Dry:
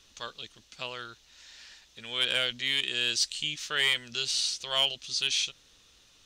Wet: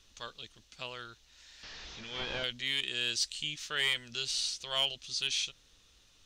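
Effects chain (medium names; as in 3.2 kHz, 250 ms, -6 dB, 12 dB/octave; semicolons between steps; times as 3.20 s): 1.63–2.44 s: one-bit delta coder 32 kbps, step -36.5 dBFS; bass shelf 81 Hz +9 dB; trim -4.5 dB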